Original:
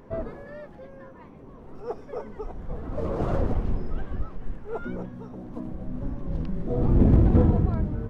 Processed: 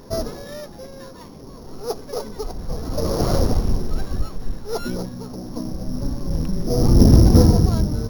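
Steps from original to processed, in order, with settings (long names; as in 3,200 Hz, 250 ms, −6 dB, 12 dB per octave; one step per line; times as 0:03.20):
samples sorted by size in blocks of 8 samples
level +6.5 dB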